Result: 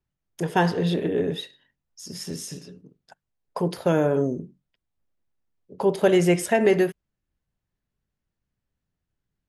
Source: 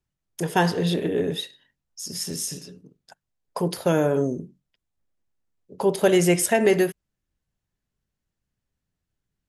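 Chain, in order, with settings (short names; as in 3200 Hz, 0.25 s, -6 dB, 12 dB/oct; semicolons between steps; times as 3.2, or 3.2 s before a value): high shelf 5300 Hz -11 dB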